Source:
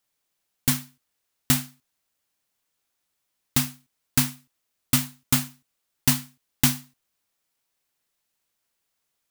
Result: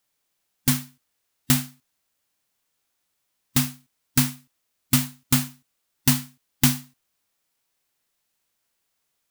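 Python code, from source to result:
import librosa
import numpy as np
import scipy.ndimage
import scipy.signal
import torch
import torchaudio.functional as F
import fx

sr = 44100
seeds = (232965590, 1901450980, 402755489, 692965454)

y = fx.hpss(x, sr, part='harmonic', gain_db=4)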